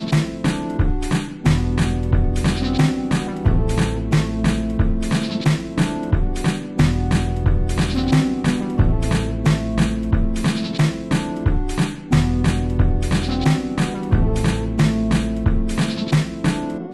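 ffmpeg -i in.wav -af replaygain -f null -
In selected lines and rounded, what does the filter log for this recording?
track_gain = +1.6 dB
track_peak = 0.389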